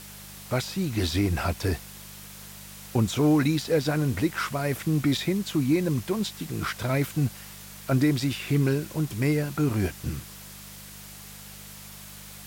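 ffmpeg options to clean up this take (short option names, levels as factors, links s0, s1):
-af "bandreject=f=50.1:t=h:w=4,bandreject=f=100.2:t=h:w=4,bandreject=f=150.3:t=h:w=4,bandreject=f=200.4:t=h:w=4,afftdn=nr=27:nf=-44"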